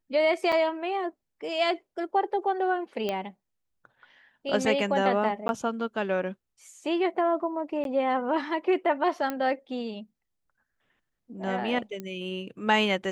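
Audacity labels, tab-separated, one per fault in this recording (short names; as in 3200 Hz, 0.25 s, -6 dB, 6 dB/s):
0.520000	0.530000	gap 5.1 ms
3.090000	3.090000	pop -16 dBFS
5.480000	5.490000	gap 11 ms
7.840000	7.850000	gap 12 ms
9.300000	9.300000	pop -16 dBFS
12.000000	12.000000	pop -22 dBFS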